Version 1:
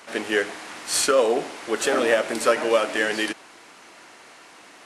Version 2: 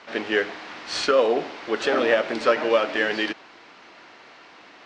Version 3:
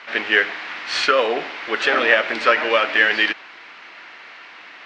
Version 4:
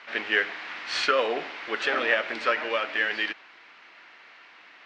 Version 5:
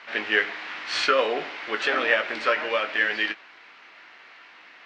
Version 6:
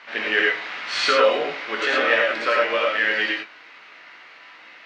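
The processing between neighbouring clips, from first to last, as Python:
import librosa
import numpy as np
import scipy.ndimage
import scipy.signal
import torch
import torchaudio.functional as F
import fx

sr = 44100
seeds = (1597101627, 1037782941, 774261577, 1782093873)

y1 = scipy.signal.sosfilt(scipy.signal.butter(4, 4900.0, 'lowpass', fs=sr, output='sos'), x)
y2 = fx.peak_eq(y1, sr, hz=2100.0, db=14.0, octaves=2.3)
y2 = y2 * librosa.db_to_amplitude(-3.5)
y3 = fx.rider(y2, sr, range_db=10, speed_s=2.0)
y3 = y3 * librosa.db_to_amplitude(-8.5)
y4 = fx.doubler(y3, sr, ms=19.0, db=-9)
y4 = y4 * librosa.db_to_amplitude(1.5)
y5 = fx.rev_gated(y4, sr, seeds[0], gate_ms=130, shape='rising', drr_db=-1.0)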